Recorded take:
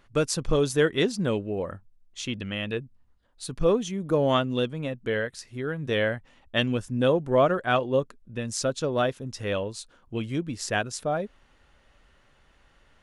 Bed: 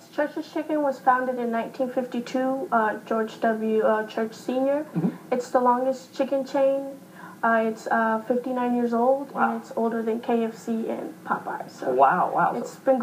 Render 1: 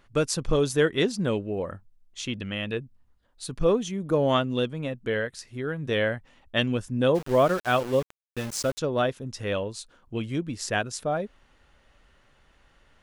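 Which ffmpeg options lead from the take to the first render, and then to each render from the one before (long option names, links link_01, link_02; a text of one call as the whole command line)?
ffmpeg -i in.wav -filter_complex "[0:a]asplit=3[link_01][link_02][link_03];[link_01]afade=type=out:start_time=7.14:duration=0.02[link_04];[link_02]aeval=exprs='val(0)*gte(abs(val(0)),0.0211)':channel_layout=same,afade=type=in:start_time=7.14:duration=0.02,afade=type=out:start_time=8.77:duration=0.02[link_05];[link_03]afade=type=in:start_time=8.77:duration=0.02[link_06];[link_04][link_05][link_06]amix=inputs=3:normalize=0" out.wav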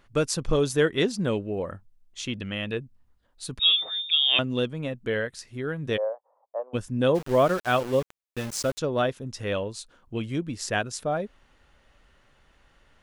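ffmpeg -i in.wav -filter_complex "[0:a]asettb=1/sr,asplit=3[link_01][link_02][link_03];[link_01]atrim=end=3.594[link_04];[link_02]atrim=start=3.59:end=4.39,asetpts=PTS-STARTPTS,afade=type=in:duration=0.004:curve=qsin,afade=type=out:start_time=0.796:duration=0.004:curve=qsin,lowpass=frequency=3200:width_type=q:width=0.5098,lowpass=frequency=3200:width_type=q:width=0.6013,lowpass=frequency=3200:width_type=q:width=0.9,lowpass=frequency=3200:width_type=q:width=2.563,afreqshift=-3800[link_05];[link_03]atrim=start=4.386[link_06];[link_04][link_05]acrossfade=duration=0.004:curve1=hsin:curve2=qsin[link_07];[link_07][link_06]acrossfade=duration=0.004:curve1=qsin:curve2=hsin,asplit=3[link_08][link_09][link_10];[link_08]afade=type=out:start_time=5.96:duration=0.02[link_11];[link_09]asuperpass=centerf=720:order=8:qfactor=1.2,afade=type=in:start_time=5.96:duration=0.02,afade=type=out:start_time=6.73:duration=0.02[link_12];[link_10]afade=type=in:start_time=6.73:duration=0.02[link_13];[link_11][link_12][link_13]amix=inputs=3:normalize=0" out.wav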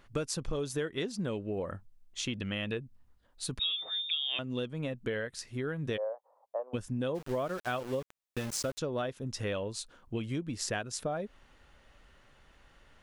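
ffmpeg -i in.wav -af "acompressor=threshold=-31dB:ratio=6" out.wav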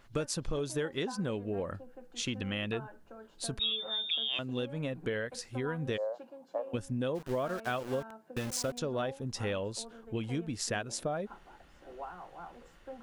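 ffmpeg -i in.wav -i bed.wav -filter_complex "[1:a]volume=-25.5dB[link_01];[0:a][link_01]amix=inputs=2:normalize=0" out.wav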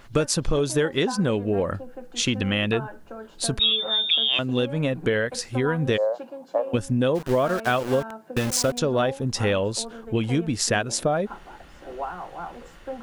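ffmpeg -i in.wav -af "volume=11.5dB" out.wav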